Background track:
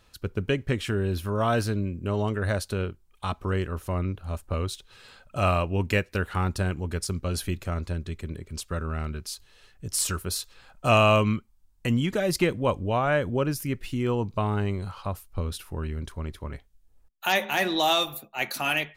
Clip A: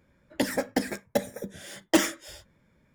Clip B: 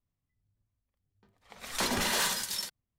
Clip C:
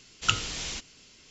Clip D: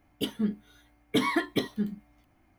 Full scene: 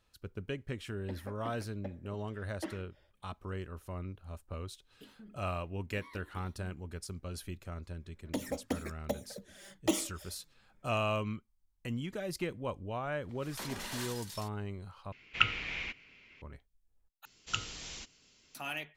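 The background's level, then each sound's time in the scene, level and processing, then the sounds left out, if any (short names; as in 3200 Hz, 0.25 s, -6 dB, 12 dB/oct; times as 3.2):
background track -13 dB
0.69 add A -18 dB + air absorption 350 m
4.8 add D -16.5 dB, fades 0.10 s + compressor, threshold -33 dBFS
7.94 add A -7.5 dB + envelope flanger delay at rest 10.9 ms, full sweep at -25.5 dBFS
11.79 add B -12.5 dB
15.12 replace with C -6.5 dB + synth low-pass 2300 Hz
17.25 replace with C -10 dB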